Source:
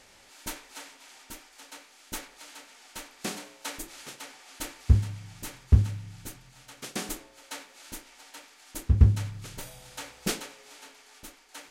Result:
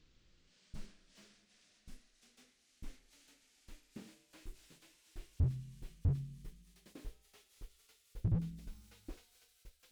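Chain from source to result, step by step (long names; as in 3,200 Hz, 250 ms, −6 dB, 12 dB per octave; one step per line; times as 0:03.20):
gliding playback speed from 58% → 178%
guitar amp tone stack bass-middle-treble 10-0-1
slew-rate limiting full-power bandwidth 2.2 Hz
level +5.5 dB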